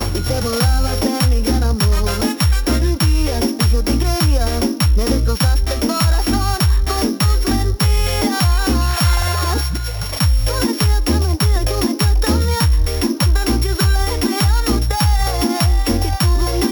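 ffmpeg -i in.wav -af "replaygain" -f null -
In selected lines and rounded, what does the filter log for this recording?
track_gain = +0.5 dB
track_peak = 0.360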